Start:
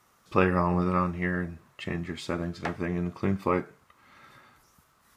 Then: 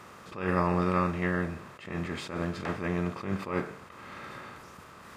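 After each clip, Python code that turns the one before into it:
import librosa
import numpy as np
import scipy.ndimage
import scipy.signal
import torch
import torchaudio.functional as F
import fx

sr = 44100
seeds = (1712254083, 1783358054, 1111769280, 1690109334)

y = fx.bin_compress(x, sr, power=0.6)
y = fx.attack_slew(y, sr, db_per_s=110.0)
y = y * librosa.db_to_amplitude(-3.0)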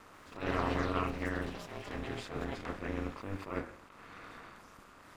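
y = x * np.sin(2.0 * np.pi * 100.0 * np.arange(len(x)) / sr)
y = fx.echo_pitch(y, sr, ms=142, semitones=7, count=3, db_per_echo=-6.0)
y = y * librosa.db_to_amplitude(-4.0)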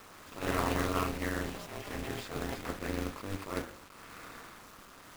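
y = fx.quant_companded(x, sr, bits=4)
y = y * librosa.db_to_amplitude(1.0)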